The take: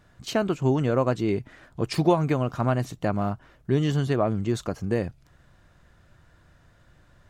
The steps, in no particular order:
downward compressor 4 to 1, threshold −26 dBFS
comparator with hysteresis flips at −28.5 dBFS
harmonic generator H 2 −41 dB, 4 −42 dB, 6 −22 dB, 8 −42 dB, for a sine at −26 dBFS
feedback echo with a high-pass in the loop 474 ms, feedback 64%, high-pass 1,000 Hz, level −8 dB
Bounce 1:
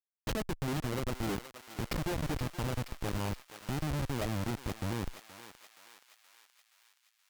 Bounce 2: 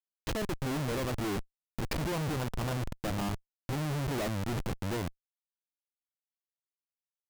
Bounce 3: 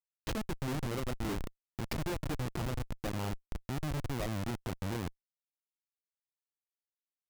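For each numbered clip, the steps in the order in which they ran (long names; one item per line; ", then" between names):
downward compressor, then comparator with hysteresis, then harmonic generator, then feedback echo with a high-pass in the loop
harmonic generator, then feedback echo with a high-pass in the loop, then comparator with hysteresis, then downward compressor
feedback echo with a high-pass in the loop, then downward compressor, then harmonic generator, then comparator with hysteresis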